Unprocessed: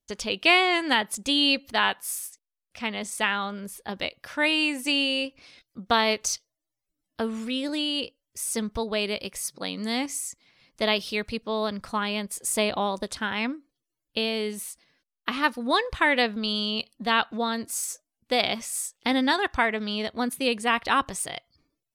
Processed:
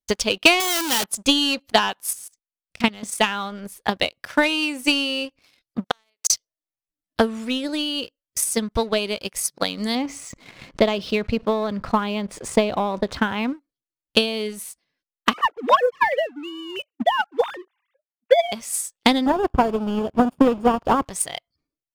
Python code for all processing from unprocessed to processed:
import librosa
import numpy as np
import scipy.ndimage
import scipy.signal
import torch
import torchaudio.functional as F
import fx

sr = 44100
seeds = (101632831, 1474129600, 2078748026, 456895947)

y = fx.chain(x, sr, fx.clip_1bit(),
    fx.tilt_eq(slope=3.0), at=(0.6, 1.04))
y = fx.chain(y, sr, fx.lowpass(hz=9000.0, slope=12),
    fx.bass_treble(bass_db=9, treble_db=6),
    fx.level_steps(step_db=13), at=(2.13, 3.03))
y = fx.chain(y, sr, fx.highpass(hz=830.0, slope=6),
    fx.high_shelf(hz=9300.0, db=5.0),
    fx.gate_flip(shuts_db=-16.0, range_db=-33), at=(5.84, 6.3))
y = fx.chain(y, sr, fx.spacing_loss(db_at_10k=26),
    fx.env_flatten(amount_pct=50), at=(9.95, 13.53))
y = fx.chain(y, sr, fx.sine_speech(),
    fx.highpass(hz=340.0, slope=12),
    fx.high_shelf(hz=2500.0, db=-8.0), at=(15.33, 18.52))
y = fx.chain(y, sr, fx.halfwave_hold(),
    fx.moving_average(points=22), at=(19.26, 21.05))
y = fx.dynamic_eq(y, sr, hz=1900.0, q=3.3, threshold_db=-41.0, ratio=4.0, max_db=-6)
y = fx.leveller(y, sr, passes=2)
y = fx.transient(y, sr, attack_db=12, sustain_db=-2)
y = y * librosa.db_to_amplitude(-5.5)